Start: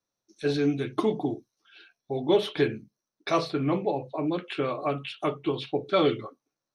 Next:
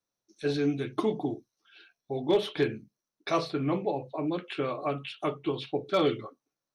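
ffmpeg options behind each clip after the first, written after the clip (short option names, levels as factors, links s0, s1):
-af "volume=4.73,asoftclip=hard,volume=0.211,volume=0.75"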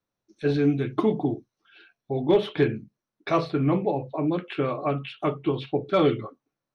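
-af "bass=f=250:g=5,treble=f=4000:g=-12,volume=1.58"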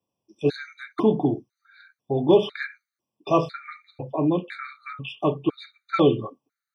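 -af "highpass=86,afftfilt=real='re*gt(sin(2*PI*1*pts/sr)*(1-2*mod(floor(b*sr/1024/1200),2)),0)':imag='im*gt(sin(2*PI*1*pts/sr)*(1-2*mod(floor(b*sr/1024/1200),2)),0)':win_size=1024:overlap=0.75,volume=1.5"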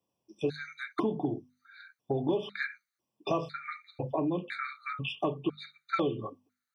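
-af "acompressor=threshold=0.0447:ratio=6,bandreject=f=50:t=h:w=6,bandreject=f=100:t=h:w=6,bandreject=f=150:t=h:w=6,bandreject=f=200:t=h:w=6,bandreject=f=250:t=h:w=6"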